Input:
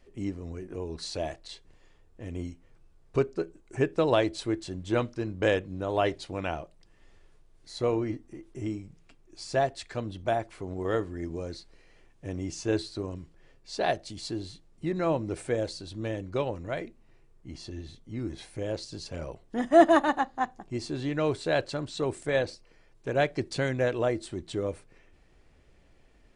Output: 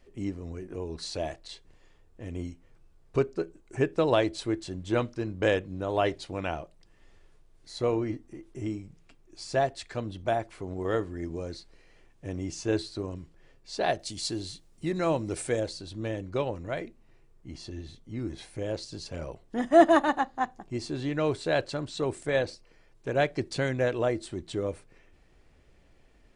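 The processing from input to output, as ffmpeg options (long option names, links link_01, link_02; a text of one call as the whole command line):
ffmpeg -i in.wav -filter_complex "[0:a]asettb=1/sr,asplit=3[link_01][link_02][link_03];[link_01]atrim=end=13.994[link_04];[link_02]atrim=start=13.99:end=15.6,asetpts=PTS-STARTPTS,afade=type=in:duration=0.004:curve=qsin,afade=type=out:start_time=1.606:duration=0.004:curve=qsin,highshelf=frequency=3900:gain=10.5[link_05];[link_03]atrim=start=15.596[link_06];[link_04][link_05]acrossfade=duration=0.004:curve1=hsin:curve2=qsin[link_07];[link_07][link_06]acrossfade=duration=0.004:curve1=qsin:curve2=hsin" out.wav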